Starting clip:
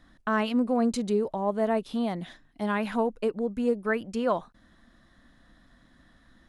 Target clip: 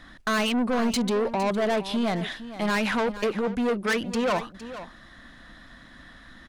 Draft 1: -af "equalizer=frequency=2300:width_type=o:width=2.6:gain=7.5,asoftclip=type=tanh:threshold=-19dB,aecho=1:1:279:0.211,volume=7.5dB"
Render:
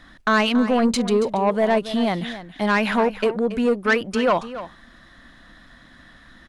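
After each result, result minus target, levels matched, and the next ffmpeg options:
echo 181 ms early; soft clipping: distortion −8 dB
-af "equalizer=frequency=2300:width_type=o:width=2.6:gain=7.5,asoftclip=type=tanh:threshold=-19dB,aecho=1:1:460:0.211,volume=7.5dB"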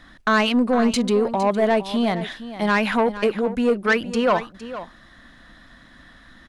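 soft clipping: distortion −8 dB
-af "equalizer=frequency=2300:width_type=o:width=2.6:gain=7.5,asoftclip=type=tanh:threshold=-29dB,aecho=1:1:460:0.211,volume=7.5dB"

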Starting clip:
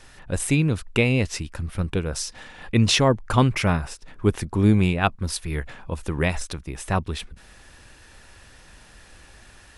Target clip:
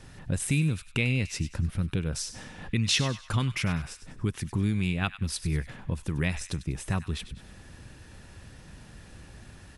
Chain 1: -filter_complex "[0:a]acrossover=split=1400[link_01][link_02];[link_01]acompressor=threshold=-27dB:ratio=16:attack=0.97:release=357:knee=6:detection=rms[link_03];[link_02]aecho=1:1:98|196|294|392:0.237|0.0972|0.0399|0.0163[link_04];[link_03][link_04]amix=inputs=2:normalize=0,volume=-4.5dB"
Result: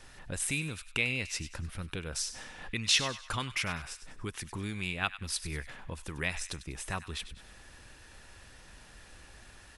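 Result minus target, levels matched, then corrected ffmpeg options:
125 Hz band −8.0 dB
-filter_complex "[0:a]acrossover=split=1400[link_01][link_02];[link_01]acompressor=threshold=-27dB:ratio=16:attack=0.97:release=357:knee=6:detection=rms,equalizer=frequency=140:width=0.47:gain=13.5[link_03];[link_02]aecho=1:1:98|196|294|392:0.237|0.0972|0.0399|0.0163[link_04];[link_03][link_04]amix=inputs=2:normalize=0,volume=-4.5dB"

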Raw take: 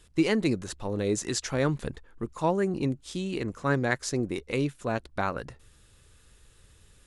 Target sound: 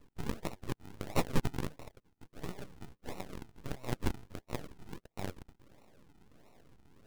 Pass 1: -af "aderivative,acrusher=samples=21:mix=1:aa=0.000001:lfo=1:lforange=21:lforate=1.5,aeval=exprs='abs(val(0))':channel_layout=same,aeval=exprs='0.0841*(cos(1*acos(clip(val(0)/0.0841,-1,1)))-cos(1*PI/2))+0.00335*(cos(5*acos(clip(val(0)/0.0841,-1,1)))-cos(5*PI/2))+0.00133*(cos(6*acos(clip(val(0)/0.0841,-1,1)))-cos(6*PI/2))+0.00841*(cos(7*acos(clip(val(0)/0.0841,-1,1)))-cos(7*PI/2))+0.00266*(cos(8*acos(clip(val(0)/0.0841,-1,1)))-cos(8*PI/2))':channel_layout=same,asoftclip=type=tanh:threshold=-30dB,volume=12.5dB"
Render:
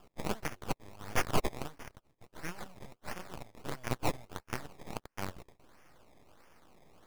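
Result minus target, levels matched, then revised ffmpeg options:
sample-and-hold swept by an LFO: distortion −16 dB
-af "aderivative,acrusher=samples=54:mix=1:aa=0.000001:lfo=1:lforange=54:lforate=1.5,aeval=exprs='abs(val(0))':channel_layout=same,aeval=exprs='0.0841*(cos(1*acos(clip(val(0)/0.0841,-1,1)))-cos(1*PI/2))+0.00335*(cos(5*acos(clip(val(0)/0.0841,-1,1)))-cos(5*PI/2))+0.00133*(cos(6*acos(clip(val(0)/0.0841,-1,1)))-cos(6*PI/2))+0.00841*(cos(7*acos(clip(val(0)/0.0841,-1,1)))-cos(7*PI/2))+0.00266*(cos(8*acos(clip(val(0)/0.0841,-1,1)))-cos(8*PI/2))':channel_layout=same,asoftclip=type=tanh:threshold=-30dB,volume=12.5dB"

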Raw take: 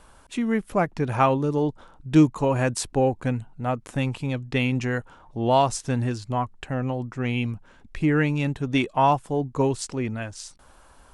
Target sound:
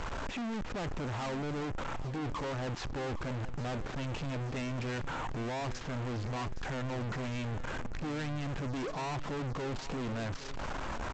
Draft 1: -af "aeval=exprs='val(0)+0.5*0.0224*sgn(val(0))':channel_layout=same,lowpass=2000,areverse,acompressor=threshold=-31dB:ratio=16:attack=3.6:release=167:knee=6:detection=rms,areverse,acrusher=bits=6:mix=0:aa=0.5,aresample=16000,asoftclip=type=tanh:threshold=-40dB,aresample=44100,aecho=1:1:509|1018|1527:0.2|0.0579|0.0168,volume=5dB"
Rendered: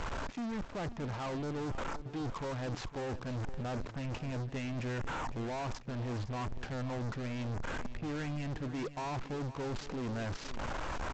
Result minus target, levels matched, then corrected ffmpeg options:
downward compressor: peak gain reduction +8.5 dB; echo 305 ms early
-af "aeval=exprs='val(0)+0.5*0.0224*sgn(val(0))':channel_layout=same,lowpass=2000,areverse,acompressor=threshold=-22dB:ratio=16:attack=3.6:release=167:knee=6:detection=rms,areverse,acrusher=bits=6:mix=0:aa=0.5,aresample=16000,asoftclip=type=tanh:threshold=-40dB,aresample=44100,aecho=1:1:814|1628|2442:0.2|0.0579|0.0168,volume=5dB"

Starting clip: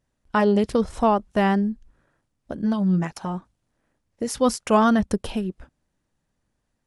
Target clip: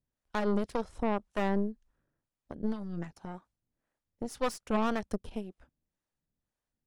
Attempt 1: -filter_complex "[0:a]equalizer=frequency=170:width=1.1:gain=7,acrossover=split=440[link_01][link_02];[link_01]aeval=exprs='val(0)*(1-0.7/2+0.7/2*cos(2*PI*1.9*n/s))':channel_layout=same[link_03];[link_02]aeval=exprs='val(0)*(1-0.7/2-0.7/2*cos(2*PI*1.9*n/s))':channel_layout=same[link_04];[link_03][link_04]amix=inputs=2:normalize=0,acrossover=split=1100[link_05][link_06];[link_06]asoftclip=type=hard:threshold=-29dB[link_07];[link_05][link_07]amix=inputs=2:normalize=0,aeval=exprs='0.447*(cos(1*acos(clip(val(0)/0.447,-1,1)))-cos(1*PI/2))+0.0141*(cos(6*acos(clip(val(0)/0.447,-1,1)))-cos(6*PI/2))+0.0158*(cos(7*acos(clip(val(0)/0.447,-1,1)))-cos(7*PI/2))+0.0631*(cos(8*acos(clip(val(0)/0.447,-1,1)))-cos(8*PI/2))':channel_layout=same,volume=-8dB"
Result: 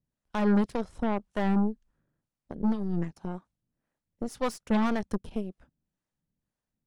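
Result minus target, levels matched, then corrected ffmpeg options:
125 Hz band +2.5 dB
-filter_complex "[0:a]acrossover=split=440[link_01][link_02];[link_01]aeval=exprs='val(0)*(1-0.7/2+0.7/2*cos(2*PI*1.9*n/s))':channel_layout=same[link_03];[link_02]aeval=exprs='val(0)*(1-0.7/2-0.7/2*cos(2*PI*1.9*n/s))':channel_layout=same[link_04];[link_03][link_04]amix=inputs=2:normalize=0,acrossover=split=1100[link_05][link_06];[link_06]asoftclip=type=hard:threshold=-29dB[link_07];[link_05][link_07]amix=inputs=2:normalize=0,aeval=exprs='0.447*(cos(1*acos(clip(val(0)/0.447,-1,1)))-cos(1*PI/2))+0.0141*(cos(6*acos(clip(val(0)/0.447,-1,1)))-cos(6*PI/2))+0.0158*(cos(7*acos(clip(val(0)/0.447,-1,1)))-cos(7*PI/2))+0.0631*(cos(8*acos(clip(val(0)/0.447,-1,1)))-cos(8*PI/2))':channel_layout=same,volume=-8dB"

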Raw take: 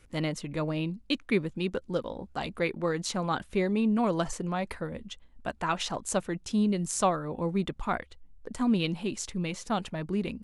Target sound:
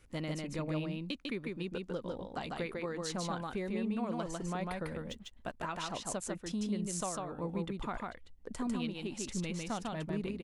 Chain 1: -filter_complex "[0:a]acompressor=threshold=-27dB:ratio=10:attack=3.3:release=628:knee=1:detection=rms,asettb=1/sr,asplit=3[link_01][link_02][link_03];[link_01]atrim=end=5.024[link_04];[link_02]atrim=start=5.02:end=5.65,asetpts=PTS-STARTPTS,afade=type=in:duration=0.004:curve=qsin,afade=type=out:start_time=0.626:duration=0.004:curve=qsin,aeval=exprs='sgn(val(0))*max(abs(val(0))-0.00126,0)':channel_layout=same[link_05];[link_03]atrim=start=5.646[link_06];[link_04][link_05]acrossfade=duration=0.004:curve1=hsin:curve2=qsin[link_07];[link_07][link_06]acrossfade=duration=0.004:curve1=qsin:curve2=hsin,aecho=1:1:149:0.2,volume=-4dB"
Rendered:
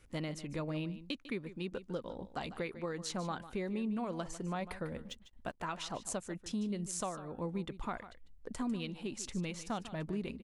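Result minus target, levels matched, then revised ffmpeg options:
echo-to-direct −11.5 dB
-filter_complex "[0:a]acompressor=threshold=-27dB:ratio=10:attack=3.3:release=628:knee=1:detection=rms,asettb=1/sr,asplit=3[link_01][link_02][link_03];[link_01]atrim=end=5.024[link_04];[link_02]atrim=start=5.02:end=5.65,asetpts=PTS-STARTPTS,afade=type=in:duration=0.004:curve=qsin,afade=type=out:start_time=0.626:duration=0.004:curve=qsin,aeval=exprs='sgn(val(0))*max(abs(val(0))-0.00126,0)':channel_layout=same[link_05];[link_03]atrim=start=5.646[link_06];[link_04][link_05]acrossfade=duration=0.004:curve1=hsin:curve2=qsin[link_07];[link_07][link_06]acrossfade=duration=0.004:curve1=qsin:curve2=hsin,aecho=1:1:149:0.75,volume=-4dB"

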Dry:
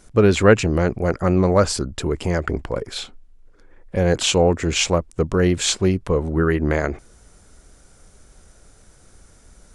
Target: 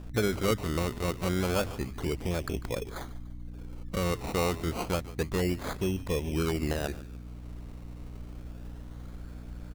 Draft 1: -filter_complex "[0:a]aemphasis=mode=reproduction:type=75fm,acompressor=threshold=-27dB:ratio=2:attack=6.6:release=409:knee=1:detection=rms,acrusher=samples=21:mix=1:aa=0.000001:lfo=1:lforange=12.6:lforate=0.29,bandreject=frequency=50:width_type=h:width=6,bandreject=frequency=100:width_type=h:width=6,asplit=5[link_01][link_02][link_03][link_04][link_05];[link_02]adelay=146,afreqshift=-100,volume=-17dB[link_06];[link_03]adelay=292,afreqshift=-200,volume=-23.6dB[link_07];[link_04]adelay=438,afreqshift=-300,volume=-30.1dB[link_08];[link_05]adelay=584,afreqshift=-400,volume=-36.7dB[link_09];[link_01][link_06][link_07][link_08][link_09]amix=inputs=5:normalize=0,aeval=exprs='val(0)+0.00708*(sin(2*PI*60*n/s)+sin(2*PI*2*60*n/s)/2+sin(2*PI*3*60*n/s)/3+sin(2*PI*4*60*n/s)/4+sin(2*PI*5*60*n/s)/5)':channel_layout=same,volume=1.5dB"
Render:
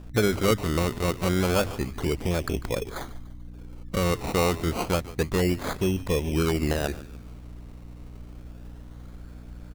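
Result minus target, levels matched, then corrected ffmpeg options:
downward compressor: peak gain reduction −5 dB
-filter_complex "[0:a]aemphasis=mode=reproduction:type=75fm,acompressor=threshold=-37dB:ratio=2:attack=6.6:release=409:knee=1:detection=rms,acrusher=samples=21:mix=1:aa=0.000001:lfo=1:lforange=12.6:lforate=0.29,bandreject=frequency=50:width_type=h:width=6,bandreject=frequency=100:width_type=h:width=6,asplit=5[link_01][link_02][link_03][link_04][link_05];[link_02]adelay=146,afreqshift=-100,volume=-17dB[link_06];[link_03]adelay=292,afreqshift=-200,volume=-23.6dB[link_07];[link_04]adelay=438,afreqshift=-300,volume=-30.1dB[link_08];[link_05]adelay=584,afreqshift=-400,volume=-36.7dB[link_09];[link_01][link_06][link_07][link_08][link_09]amix=inputs=5:normalize=0,aeval=exprs='val(0)+0.00708*(sin(2*PI*60*n/s)+sin(2*PI*2*60*n/s)/2+sin(2*PI*3*60*n/s)/3+sin(2*PI*4*60*n/s)/4+sin(2*PI*5*60*n/s)/5)':channel_layout=same,volume=1.5dB"

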